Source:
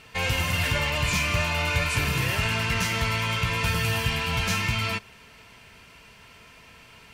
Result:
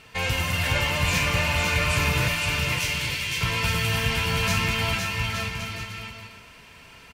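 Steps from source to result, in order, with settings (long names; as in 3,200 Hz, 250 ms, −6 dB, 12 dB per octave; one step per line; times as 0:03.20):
0:02.28–0:03.41: inverse Chebyshev high-pass filter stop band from 830 Hz, stop band 50 dB
bouncing-ball delay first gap 510 ms, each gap 0.7×, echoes 5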